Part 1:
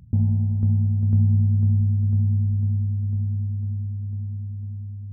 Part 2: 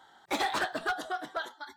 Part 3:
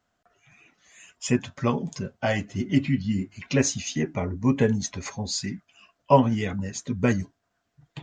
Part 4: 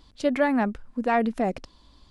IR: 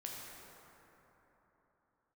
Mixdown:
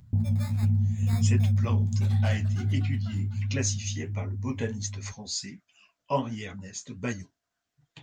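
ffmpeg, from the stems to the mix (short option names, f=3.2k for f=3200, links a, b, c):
-filter_complex "[0:a]volume=-1dB[a];[1:a]adelay=1700,volume=-17.5dB[b];[2:a]volume=-7dB[c];[3:a]highpass=630,equalizer=f=6k:t=o:w=0.91:g=-9,acrusher=samples=15:mix=1:aa=0.000001,volume=-18.5dB[d];[a][b][c][d]amix=inputs=4:normalize=0,highshelf=f=2.1k:g=9.5,flanger=delay=7.8:depth=9.5:regen=-46:speed=1.4:shape=sinusoidal"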